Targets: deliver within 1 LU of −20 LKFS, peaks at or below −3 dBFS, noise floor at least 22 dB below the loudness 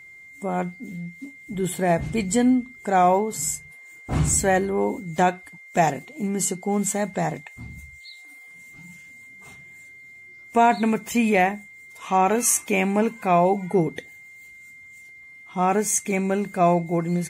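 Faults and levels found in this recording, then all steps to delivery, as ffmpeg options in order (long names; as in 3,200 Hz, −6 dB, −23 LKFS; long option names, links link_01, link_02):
interfering tone 2,100 Hz; level of the tone −43 dBFS; integrated loudness −22.5 LKFS; sample peak −7.0 dBFS; target loudness −20.0 LKFS
→ -af "bandreject=frequency=2100:width=30"
-af "volume=2.5dB"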